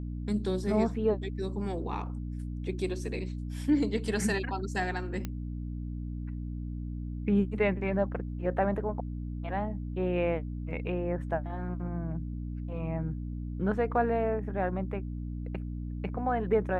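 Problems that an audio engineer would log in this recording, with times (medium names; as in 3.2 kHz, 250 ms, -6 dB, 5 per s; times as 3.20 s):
hum 60 Hz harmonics 5 -36 dBFS
5.25 s: pop -20 dBFS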